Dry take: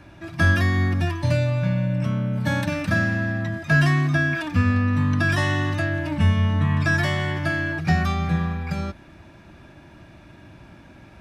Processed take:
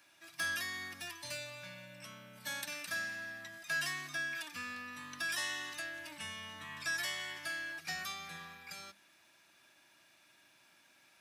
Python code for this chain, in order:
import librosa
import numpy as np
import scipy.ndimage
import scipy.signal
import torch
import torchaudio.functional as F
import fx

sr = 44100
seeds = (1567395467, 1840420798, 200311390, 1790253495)

y = scipy.signal.sosfilt(scipy.signal.butter(2, 81.0, 'highpass', fs=sr, output='sos'), x)
y = np.diff(y, prepend=0.0)
y = fx.hum_notches(y, sr, base_hz=50, count=4)
y = y * 10.0 ** (-1.0 / 20.0)